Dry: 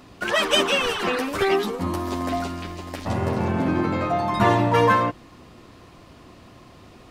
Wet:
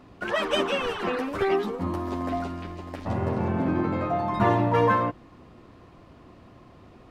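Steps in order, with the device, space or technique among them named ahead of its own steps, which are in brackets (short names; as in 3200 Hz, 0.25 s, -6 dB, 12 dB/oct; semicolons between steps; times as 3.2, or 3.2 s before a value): through cloth (high shelf 3000 Hz -13 dB); gain -2.5 dB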